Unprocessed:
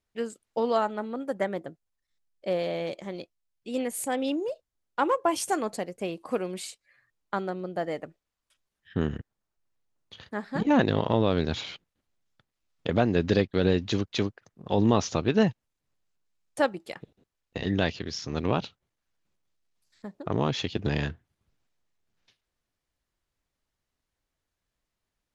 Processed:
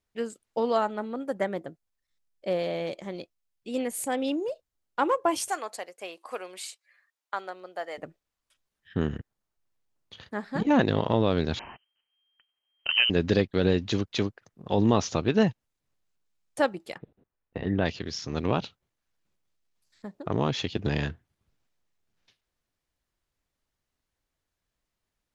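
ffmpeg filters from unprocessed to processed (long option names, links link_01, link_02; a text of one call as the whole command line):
ffmpeg -i in.wav -filter_complex "[0:a]asettb=1/sr,asplit=3[link_01][link_02][link_03];[link_01]atrim=end=5.484[link_04];[link_02]atrim=start=5.48:end=7.98,asetpts=PTS-STARTPTS,afade=type=in:duration=0.004:curve=qsin,afade=type=out:start_time=2.496:duration=0.004:curve=qsin,highpass=710[link_05];[link_03]atrim=start=7.976[link_06];[link_04][link_05]acrossfade=duration=0.004:curve1=hsin:curve2=qsin[link_07];[link_07][link_06]acrossfade=duration=0.004:curve1=qsin:curve2=hsin,asettb=1/sr,asplit=3[link_08][link_09][link_10];[link_08]atrim=end=11.594[link_11];[link_09]atrim=start=11.59:end=13.1,asetpts=PTS-STARTPTS,afade=type=in:duration=0.004:curve=qsin,afade=type=out:start_time=1.506:duration=0.004:curve=qsin,lowpass=frequency=2700:width_type=q:width=0.5098,lowpass=frequency=2700:width_type=q:width=0.6013,lowpass=frequency=2700:width_type=q:width=0.9,lowpass=frequency=2700:width_type=q:width=2.563,afreqshift=-3200[link_12];[link_10]atrim=start=13.096[link_13];[link_11][link_12]acrossfade=duration=0.004:curve1=hsin:curve2=qsin[link_14];[link_14][link_13]acrossfade=duration=0.004:curve1=qsin:curve2=hsin,asplit=3[link_15][link_16][link_17];[link_15]afade=type=out:start_time=16.97:duration=0.02[link_18];[link_16]lowpass=1800,afade=type=in:start_time=16.97:duration=0.02,afade=type=out:start_time=17.84:duration=0.02[link_19];[link_17]afade=type=in:start_time=17.84:duration=0.02[link_20];[link_18][link_19][link_20]amix=inputs=3:normalize=0" out.wav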